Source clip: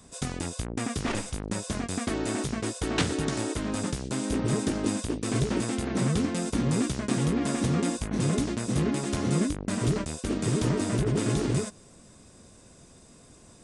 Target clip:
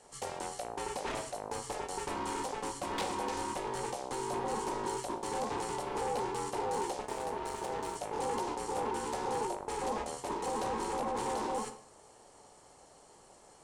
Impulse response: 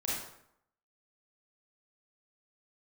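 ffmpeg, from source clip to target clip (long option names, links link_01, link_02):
-filter_complex "[0:a]asettb=1/sr,asplit=3[link_01][link_02][link_03];[link_01]atrim=end=7.024[link_04];[link_02]atrim=start=7.02:end=7.96,asetpts=PTS-STARTPTS,afade=type=in:duration=0.004:curve=qsin,afade=type=out:start_time=0.936:duration=0.004:curve=qsin,aeval=exprs='0.211*(cos(1*acos(clip(val(0)/0.211,-1,1)))-cos(1*PI/2))+0.0376*(cos(3*acos(clip(val(0)/0.211,-1,1)))-cos(3*PI/2))+0.0133*(cos(8*acos(clip(val(0)/0.211,-1,1)))-cos(8*PI/2))':channel_layout=same[link_05];[link_03]atrim=start=7.956[link_06];[link_04][link_05]acrossfade=duration=0.004:curve1=hsin:curve2=qsin[link_07];[link_07][link_06]acrossfade=duration=0.004:curve1=qsin:curve2=hsin,asoftclip=type=tanh:threshold=-24dB,aeval=exprs='val(0)*sin(2*PI*650*n/s)':channel_layout=same,asplit=2[link_08][link_09];[1:a]atrim=start_sample=2205,asetrate=52920,aresample=44100[link_10];[link_09][link_10]afir=irnorm=-1:irlink=0,volume=-10dB[link_11];[link_08][link_11]amix=inputs=2:normalize=0,volume=-4.5dB"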